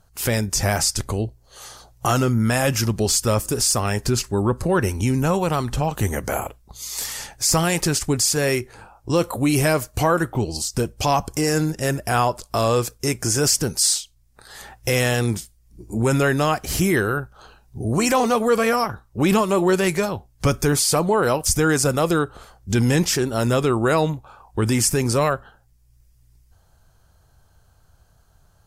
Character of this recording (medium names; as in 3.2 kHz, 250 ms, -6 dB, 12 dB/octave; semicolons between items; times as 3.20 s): noise floor -58 dBFS; spectral tilt -4.0 dB/octave